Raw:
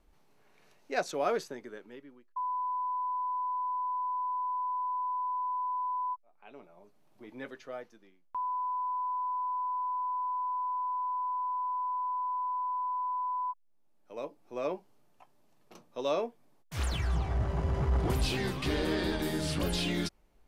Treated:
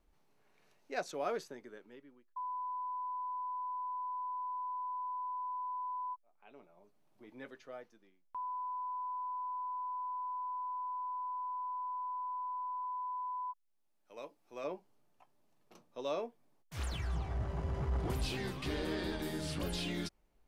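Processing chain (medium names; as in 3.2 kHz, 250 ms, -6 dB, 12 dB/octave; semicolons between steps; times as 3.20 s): 12.84–14.64 s: tilt shelf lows -4.5 dB; trim -6.5 dB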